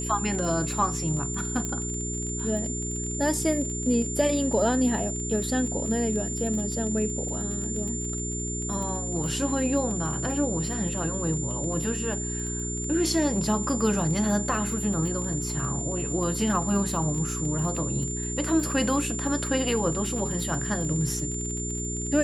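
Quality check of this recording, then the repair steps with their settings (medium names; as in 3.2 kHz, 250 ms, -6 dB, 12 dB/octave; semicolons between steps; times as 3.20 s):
crackle 30 per s -32 dBFS
hum 60 Hz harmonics 7 -33 dBFS
whine 7.2 kHz -32 dBFS
1.65 s: pop -17 dBFS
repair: de-click; de-hum 60 Hz, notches 7; band-stop 7.2 kHz, Q 30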